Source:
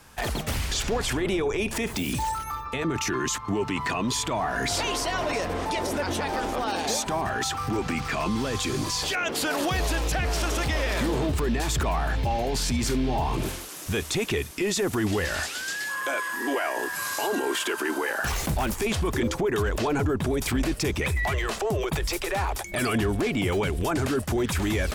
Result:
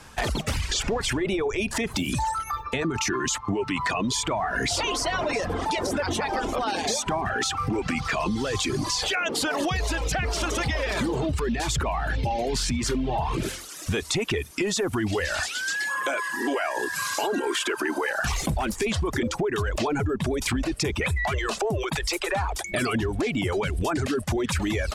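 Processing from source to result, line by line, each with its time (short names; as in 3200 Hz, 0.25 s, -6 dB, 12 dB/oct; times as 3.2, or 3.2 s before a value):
21.83–22.34 low shelf 230 Hz -7 dB
whole clip: LPF 9400 Hz 12 dB/oct; reverb removal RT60 1.2 s; compressor, threshold -28 dBFS; gain +5.5 dB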